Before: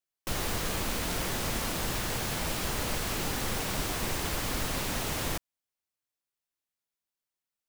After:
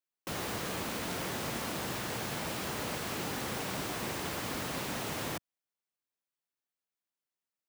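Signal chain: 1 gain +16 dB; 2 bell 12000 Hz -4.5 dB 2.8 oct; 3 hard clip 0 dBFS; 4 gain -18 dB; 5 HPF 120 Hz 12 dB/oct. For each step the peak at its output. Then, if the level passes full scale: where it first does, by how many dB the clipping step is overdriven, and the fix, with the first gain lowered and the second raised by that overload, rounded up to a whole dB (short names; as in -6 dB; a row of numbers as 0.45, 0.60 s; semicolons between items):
-2.0, -2.5, -2.5, -20.5, -23.0 dBFS; no overload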